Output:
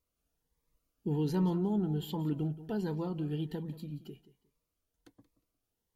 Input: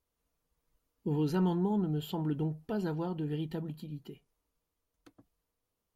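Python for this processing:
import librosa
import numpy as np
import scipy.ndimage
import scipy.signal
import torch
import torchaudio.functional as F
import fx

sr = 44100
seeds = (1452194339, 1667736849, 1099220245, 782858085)

y = fx.echo_feedback(x, sr, ms=179, feedback_pct=23, wet_db=-16.0)
y = fx.notch_cascade(y, sr, direction='rising', hz=1.3)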